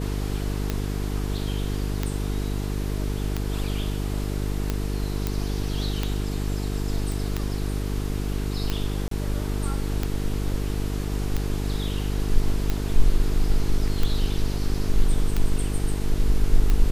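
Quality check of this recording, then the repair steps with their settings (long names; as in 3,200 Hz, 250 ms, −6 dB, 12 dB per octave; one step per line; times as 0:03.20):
mains buzz 50 Hz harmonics 9 −27 dBFS
scratch tick 45 rpm −11 dBFS
0:05.27: click −11 dBFS
0:07.12: click
0:09.08–0:09.11: drop-out 33 ms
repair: click removal
hum removal 50 Hz, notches 9
repair the gap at 0:09.08, 33 ms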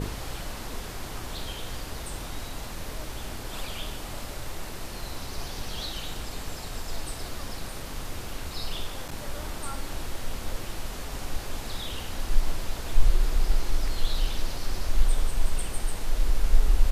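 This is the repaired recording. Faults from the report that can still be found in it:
none of them is left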